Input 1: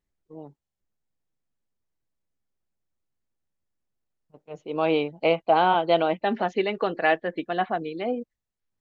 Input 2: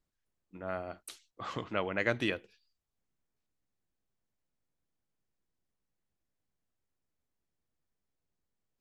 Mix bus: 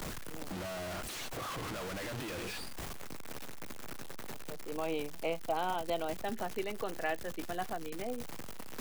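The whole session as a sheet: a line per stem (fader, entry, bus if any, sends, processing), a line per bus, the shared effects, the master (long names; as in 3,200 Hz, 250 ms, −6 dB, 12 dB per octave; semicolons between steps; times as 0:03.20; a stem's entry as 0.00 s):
−12.5 dB, 0.00 s, no send, no processing
+2.0 dB, 0.00 s, no send, sign of each sample alone; multiband upward and downward compressor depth 40%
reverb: not used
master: multiband upward and downward compressor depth 40%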